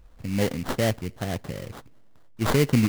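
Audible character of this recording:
phaser sweep stages 6, 2.6 Hz, lowest notch 800–2,100 Hz
aliases and images of a low sample rate 2,500 Hz, jitter 20%

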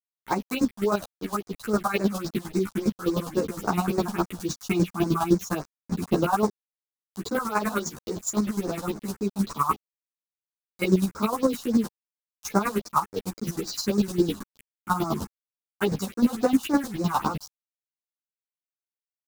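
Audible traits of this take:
a quantiser's noise floor 6 bits, dither none
phaser sweep stages 4, 3.6 Hz, lowest notch 340–3,100 Hz
chopped level 9.8 Hz, depth 65%, duty 25%
a shimmering, thickened sound

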